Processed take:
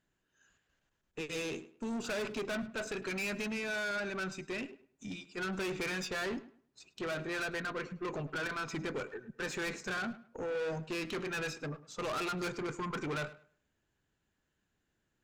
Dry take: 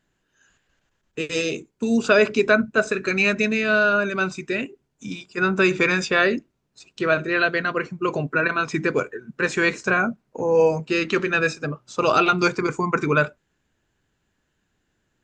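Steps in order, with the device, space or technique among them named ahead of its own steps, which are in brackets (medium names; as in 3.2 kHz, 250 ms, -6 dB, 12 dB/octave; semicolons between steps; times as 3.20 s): rockabilly slapback (valve stage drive 25 dB, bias 0.25; tape echo 104 ms, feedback 27%, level -14.5 dB, low-pass 3.1 kHz); trim -8.5 dB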